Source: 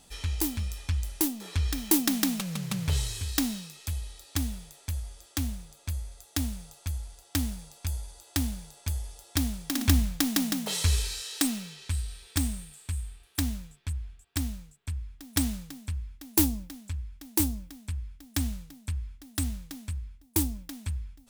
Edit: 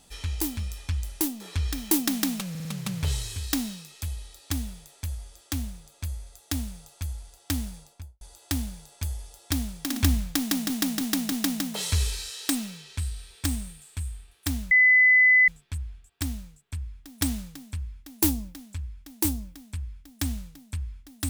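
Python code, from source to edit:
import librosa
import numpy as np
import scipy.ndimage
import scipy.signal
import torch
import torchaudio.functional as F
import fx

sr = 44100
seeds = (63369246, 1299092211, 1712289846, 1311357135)

y = fx.studio_fade_out(x, sr, start_s=7.6, length_s=0.46)
y = fx.edit(y, sr, fx.stutter(start_s=2.5, slice_s=0.05, count=4),
    fx.repeat(start_s=10.24, length_s=0.31, count=4),
    fx.insert_tone(at_s=13.63, length_s=0.77, hz=2010.0, db=-14.0), tone=tone)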